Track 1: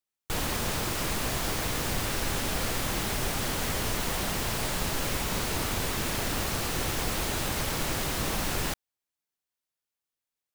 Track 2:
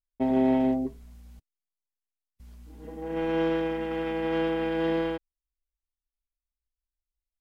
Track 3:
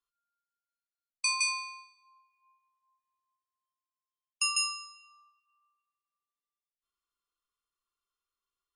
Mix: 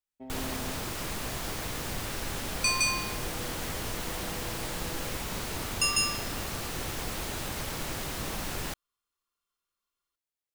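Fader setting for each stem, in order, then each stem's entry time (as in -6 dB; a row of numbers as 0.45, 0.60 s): -5.0, -19.0, +2.0 dB; 0.00, 0.00, 1.40 s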